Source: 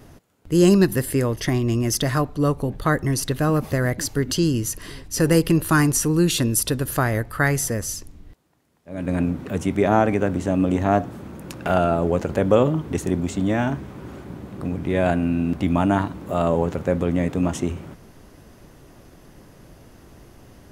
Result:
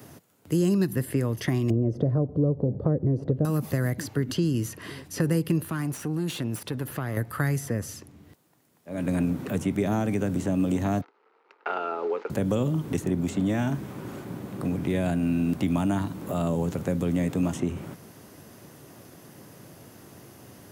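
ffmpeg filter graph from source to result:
ffmpeg -i in.wav -filter_complex "[0:a]asettb=1/sr,asplit=3[link_01][link_02][link_03];[link_01]atrim=end=1.704[link_04];[link_02]atrim=start=1.7:end=3.45,asetpts=PTS-STARTPTS,afade=type=in:duration=0.004:curve=qsin,afade=type=out:start_time=1.746:duration=0.004:curve=qsin,lowpass=frequency=520:width_type=q:width=3.4,lowshelf=frequency=160:gain=8,acompressor=mode=upward:threshold=-16dB:ratio=2.5:attack=3.2:release=140:knee=2.83:detection=peak[link_05];[link_03]atrim=start=3.446[link_06];[link_04][link_05]acrossfade=duration=0.004:curve1=hsin:curve2=qsin[link_07];[link_07][link_06]acrossfade=duration=0.004:curve1=qsin:curve2=hsin,asettb=1/sr,asplit=3[link_08][link_09][link_10];[link_08]atrim=end=5.654[link_11];[link_09]atrim=start=5.65:end=7.17,asetpts=PTS-STARTPTS,afade=type=in:duration=0.004:curve=qsin,afade=type=out:start_time=1.516:duration=0.004:curve=qsin,acompressor=threshold=-25dB:ratio=2.5:attack=3.2:release=140:knee=1:detection=peak,aeval=exprs='(tanh(10*val(0)+0.5)-tanh(0.5))/10':channel_layout=same[link_12];[link_10]atrim=start=7.166[link_13];[link_11][link_12]acrossfade=duration=0.004:curve1=hsin:curve2=qsin[link_14];[link_14][link_13]acrossfade=duration=0.004:curve1=qsin:curve2=hsin,asettb=1/sr,asplit=3[link_15][link_16][link_17];[link_15]atrim=end=11.014[link_18];[link_16]atrim=start=11.01:end=12.3,asetpts=PTS-STARTPTS,afade=type=in:duration=0.004:curve=qsin,afade=type=out:start_time=1.286:duration=0.004:curve=qsin,agate=range=-33dB:threshold=-24dB:ratio=3:release=100:detection=peak,acrusher=bits=8:dc=4:mix=0:aa=0.000001,highpass=frequency=410:width=0.5412,highpass=frequency=410:width=1.3066,equalizer=frequency=430:width_type=q:width=4:gain=9,equalizer=frequency=620:width_type=q:width=4:gain=-7,equalizer=frequency=880:width_type=q:width=4:gain=9,equalizer=frequency=1300:width_type=q:width=4:gain=10,equalizer=frequency=2100:width_type=q:width=4:gain=4,equalizer=frequency=3400:width_type=q:width=4:gain=-6,lowpass=frequency=3500:width=0.5412,lowpass=frequency=3500:width=1.3066[link_19];[link_17]atrim=start=12.296[link_20];[link_18][link_19]acrossfade=duration=0.004:curve1=hsin:curve2=qsin[link_21];[link_21][link_20]acrossfade=duration=0.004:curve1=qsin:curve2=hsin,highpass=frequency=96:width=0.5412,highpass=frequency=96:width=1.3066,highshelf=frequency=9200:gain=11,acrossover=split=270|3300[link_22][link_23][link_24];[link_22]acompressor=threshold=-23dB:ratio=4[link_25];[link_23]acompressor=threshold=-31dB:ratio=4[link_26];[link_24]acompressor=threshold=-44dB:ratio=4[link_27];[link_25][link_26][link_27]amix=inputs=3:normalize=0" out.wav

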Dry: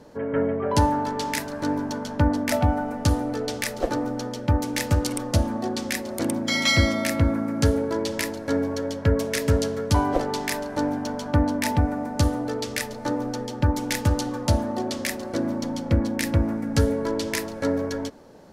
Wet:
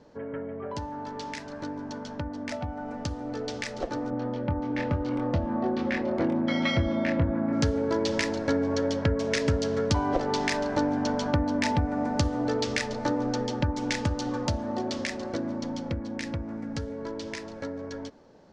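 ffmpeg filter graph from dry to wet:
ffmpeg -i in.wav -filter_complex "[0:a]asettb=1/sr,asplit=3[link_01][link_02][link_03];[link_01]atrim=end=4.104[link_04];[link_02]atrim=start=4.1:end=7.53,asetpts=PTS-STARTPTS,afade=type=in:duration=0.004:curve=qsin,afade=type=out:start_time=3.426:duration=0.004:curve=qsin,lowpass=2000,asplit=2[link_05][link_06];[link_06]adelay=24,volume=-3.5dB[link_07];[link_05][link_07]amix=inputs=2:normalize=0,atrim=end_sample=151263[link_08];[link_03]atrim=start=7.526[link_09];[link_04][link_08]acrossfade=duration=0.004:curve1=hsin:curve2=qsin[link_10];[link_10][link_09]acrossfade=duration=0.004:curve1=qsin:curve2=hsin,acompressor=threshold=-26dB:ratio=5,lowpass=frequency=6500:width=0.5412,lowpass=frequency=6500:width=1.3066,dynaudnorm=framelen=540:gausssize=17:maxgain=11.5dB,volume=-6.5dB" out.wav

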